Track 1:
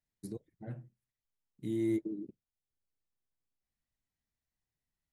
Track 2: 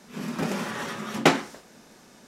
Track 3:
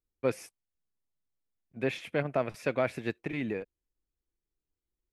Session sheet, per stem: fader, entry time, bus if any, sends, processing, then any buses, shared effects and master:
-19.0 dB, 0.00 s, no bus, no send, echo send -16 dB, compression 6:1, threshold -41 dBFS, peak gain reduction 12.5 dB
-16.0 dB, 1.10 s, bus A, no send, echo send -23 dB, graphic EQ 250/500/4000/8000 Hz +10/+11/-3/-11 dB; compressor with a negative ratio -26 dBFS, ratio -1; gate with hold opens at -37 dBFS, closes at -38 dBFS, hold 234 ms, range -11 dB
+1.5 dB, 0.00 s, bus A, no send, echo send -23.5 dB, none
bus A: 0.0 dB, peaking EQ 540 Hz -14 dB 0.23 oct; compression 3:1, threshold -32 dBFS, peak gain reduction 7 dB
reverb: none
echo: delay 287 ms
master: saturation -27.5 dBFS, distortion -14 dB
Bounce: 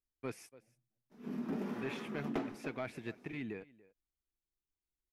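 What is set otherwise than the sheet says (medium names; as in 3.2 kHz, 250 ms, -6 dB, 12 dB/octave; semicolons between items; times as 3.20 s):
stem 1 -19.0 dB -> -31.0 dB; stem 2: missing compressor with a negative ratio -26 dBFS, ratio -1; stem 3 +1.5 dB -> -7.5 dB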